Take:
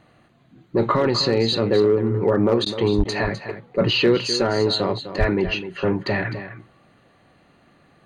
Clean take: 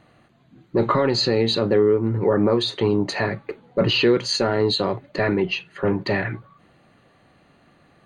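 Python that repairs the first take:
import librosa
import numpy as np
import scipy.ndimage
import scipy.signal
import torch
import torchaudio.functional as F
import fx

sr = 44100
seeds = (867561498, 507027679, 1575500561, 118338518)

y = fx.fix_declip(x, sr, threshold_db=-9.5)
y = fx.fix_deplosive(y, sr, at_s=(2.97, 5.19))
y = fx.fix_interpolate(y, sr, at_s=(2.65, 3.04), length_ms=10.0)
y = fx.fix_echo_inverse(y, sr, delay_ms=255, level_db=-11.5)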